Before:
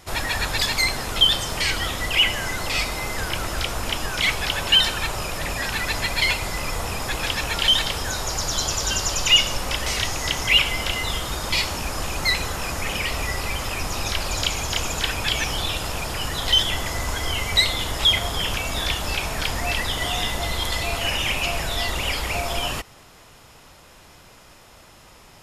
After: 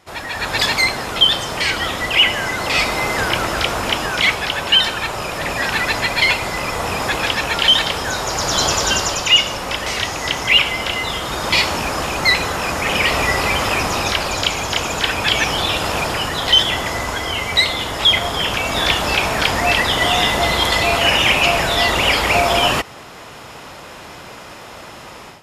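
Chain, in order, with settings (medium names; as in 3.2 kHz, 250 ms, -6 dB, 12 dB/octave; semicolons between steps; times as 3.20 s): high-pass 190 Hz 6 dB/octave; treble shelf 4.8 kHz -10 dB; level rider gain up to 16.5 dB; trim -1 dB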